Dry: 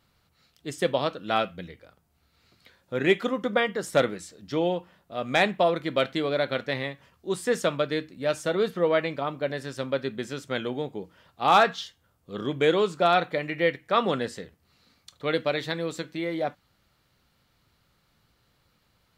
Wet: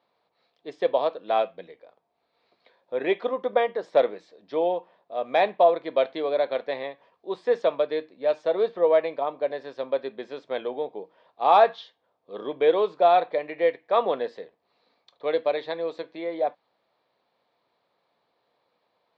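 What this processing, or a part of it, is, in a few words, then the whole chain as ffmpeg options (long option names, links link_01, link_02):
phone earpiece: -af "highpass=420,equalizer=frequency=470:width_type=q:width=4:gain=5,equalizer=frequency=670:width_type=q:width=4:gain=6,equalizer=frequency=970:width_type=q:width=4:gain=4,equalizer=frequency=1400:width_type=q:width=4:gain=-10,equalizer=frequency=2000:width_type=q:width=4:gain=-5,equalizer=frequency=2900:width_type=q:width=4:gain=-9,lowpass=frequency=3600:width=0.5412,lowpass=frequency=3600:width=1.3066"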